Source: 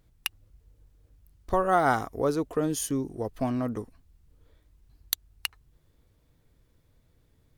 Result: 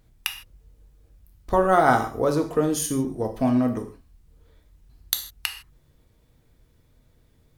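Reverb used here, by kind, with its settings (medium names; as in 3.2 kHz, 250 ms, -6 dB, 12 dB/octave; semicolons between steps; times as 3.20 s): gated-style reverb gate 180 ms falling, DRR 4.5 dB; trim +3.5 dB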